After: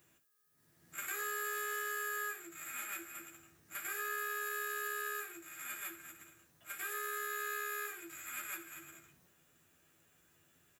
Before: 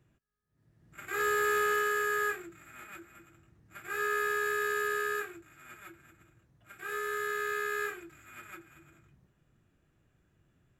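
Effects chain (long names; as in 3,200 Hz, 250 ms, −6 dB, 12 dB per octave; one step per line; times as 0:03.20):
RIAA equalisation recording
downward compressor 12 to 1, threshold −42 dBFS, peak gain reduction 18.5 dB
ambience of single reflections 12 ms −4 dB, 69 ms −11.5 dB
level +2 dB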